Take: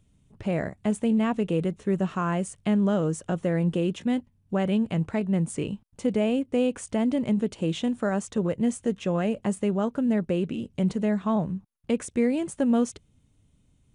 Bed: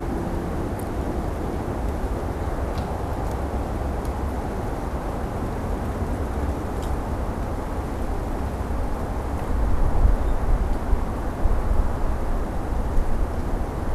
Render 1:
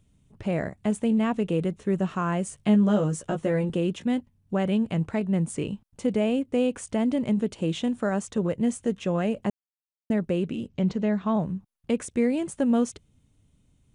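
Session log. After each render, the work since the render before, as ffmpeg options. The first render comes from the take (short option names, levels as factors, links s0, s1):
-filter_complex "[0:a]asettb=1/sr,asplit=3[s0][s1][s2];[s0]atrim=end=2.454[s3];[s1]atrim=start=2.45:end=3.7,asetpts=PTS-STARTPTS,afade=t=in:d=0.004:c=qsin,afade=t=out:st=1.246:d=0.004:c=qsin,asplit=2[s4][s5];[s5]adelay=14,volume=0.631[s6];[s4][s6]amix=inputs=2:normalize=0,atrim=end_sample=55125[s7];[s2]atrim=start=3.696[s8];[s3][s7]acrossfade=d=0.004:c1=hsin:c2=qsin[s9];[s9][s8]acrossfade=d=0.004:c1=qsin:c2=hsin,asplit=3[s10][s11][s12];[s10]afade=t=out:st=10.67:d=0.02[s13];[s11]lowpass=f=6100:w=0.5412,lowpass=f=6100:w=1.3066,afade=t=in:st=10.67:d=0.02,afade=t=out:st=11.33:d=0.02[s14];[s12]afade=t=in:st=11.33:d=0.02[s15];[s13][s14][s15]amix=inputs=3:normalize=0,asplit=3[s16][s17][s18];[s16]atrim=end=9.5,asetpts=PTS-STARTPTS,afade=t=out:st=9.496:d=0.004:c=hsin[s19];[s17]atrim=start=9.5:end=10.1,asetpts=PTS-STARTPTS,volume=0[s20];[s18]atrim=start=10.1,asetpts=PTS-STARTPTS,afade=t=in:d=0.004:c=hsin[s21];[s19][s20][s21]concat=n=3:v=0:a=1"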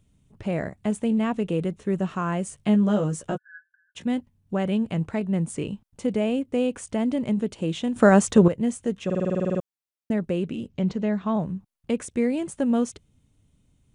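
-filter_complex "[0:a]asplit=3[s0][s1][s2];[s0]afade=t=out:st=3.36:d=0.02[s3];[s1]asuperpass=centerf=1600:order=20:qfactor=5.5,afade=t=in:st=3.36:d=0.02,afade=t=out:st=3.95:d=0.02[s4];[s2]afade=t=in:st=3.95:d=0.02[s5];[s3][s4][s5]amix=inputs=3:normalize=0,asplit=14[s6][s7][s8][s9][s10][s11][s12][s13][s14][s15][s16][s17][s18][s19];[s6]atrim=end=7.962[s20];[s7]atrim=start=7.958:end=8.482,asetpts=PTS-STARTPTS,volume=3.55[s21];[s8]atrim=start=8.478:end=9.102[s22];[s9]atrim=start=9.048:end=9.102[s23];[s10]atrim=start=9.048:end=9.102[s24];[s11]atrim=start=9.048:end=9.102[s25];[s12]atrim=start=9.048:end=9.102[s26];[s13]atrim=start=9.048:end=9.102[s27];[s14]atrim=start=9.048:end=9.102[s28];[s15]atrim=start=9.048:end=9.102[s29];[s16]atrim=start=9.048:end=9.102[s30];[s17]atrim=start=9.048:end=9.102[s31];[s18]atrim=start=9.048:end=9.102[s32];[s19]atrim=start=9.598[s33];[s20][s21]acrossfade=d=0.004:c1=hsin:c2=hsin[s34];[s34][s22]acrossfade=d=0.004:c1=hsin:c2=hsin[s35];[s35][s23]acrossfade=d=0.004:c1=hsin:c2=hsin[s36];[s36][s24]acrossfade=d=0.004:c1=hsin:c2=hsin[s37];[s37][s25]acrossfade=d=0.004:c1=hsin:c2=hsin[s38];[s38][s26]acrossfade=d=0.004:c1=hsin:c2=hsin[s39];[s39][s27]acrossfade=d=0.004:c1=hsin:c2=hsin[s40];[s40][s28]acrossfade=d=0.004:c1=hsin:c2=hsin[s41];[s41][s29]acrossfade=d=0.004:c1=hsin:c2=hsin[s42];[s42][s30]acrossfade=d=0.004:c1=hsin:c2=hsin[s43];[s43][s31]acrossfade=d=0.004:c1=hsin:c2=hsin[s44];[s44][s32]acrossfade=d=0.004:c1=hsin:c2=hsin[s45];[s45][s33]acrossfade=d=0.004:c1=hsin:c2=hsin"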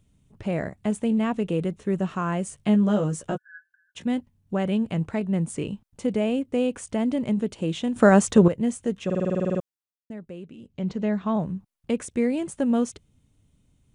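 -filter_complex "[0:a]asplit=3[s0][s1][s2];[s0]atrim=end=10.03,asetpts=PTS-STARTPTS,afade=t=out:st=9.56:d=0.47:silence=0.223872[s3];[s1]atrim=start=10.03:end=10.59,asetpts=PTS-STARTPTS,volume=0.224[s4];[s2]atrim=start=10.59,asetpts=PTS-STARTPTS,afade=t=in:d=0.47:silence=0.223872[s5];[s3][s4][s5]concat=n=3:v=0:a=1"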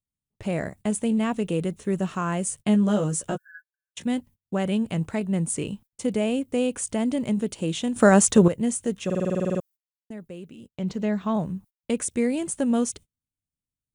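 -af "agate=range=0.0282:threshold=0.00562:ratio=16:detection=peak,aemphasis=mode=production:type=50fm"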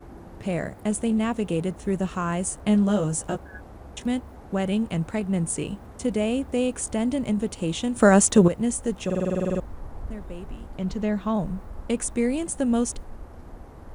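-filter_complex "[1:a]volume=0.141[s0];[0:a][s0]amix=inputs=2:normalize=0"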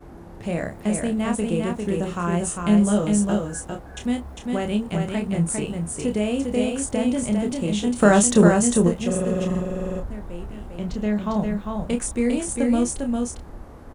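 -filter_complex "[0:a]asplit=2[s0][s1];[s1]adelay=29,volume=0.501[s2];[s0][s2]amix=inputs=2:normalize=0,aecho=1:1:401:0.631"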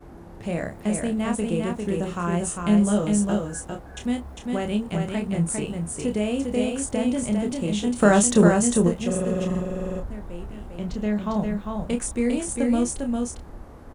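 -af "volume=0.841"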